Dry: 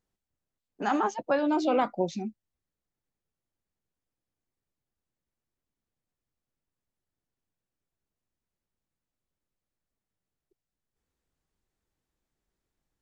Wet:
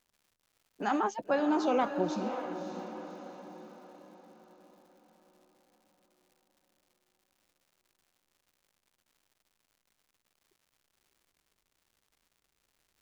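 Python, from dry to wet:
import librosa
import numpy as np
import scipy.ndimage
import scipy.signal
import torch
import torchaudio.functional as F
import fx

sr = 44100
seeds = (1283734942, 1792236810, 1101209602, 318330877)

y = fx.echo_diffused(x, sr, ms=580, feedback_pct=48, wet_db=-8)
y = fx.dmg_crackle(y, sr, seeds[0], per_s=250.0, level_db=-54.0)
y = y * 10.0 ** (-3.0 / 20.0)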